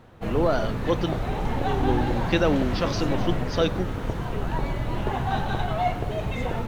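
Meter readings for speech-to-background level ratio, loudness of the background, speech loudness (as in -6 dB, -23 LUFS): 1.0 dB, -28.5 LUFS, -27.5 LUFS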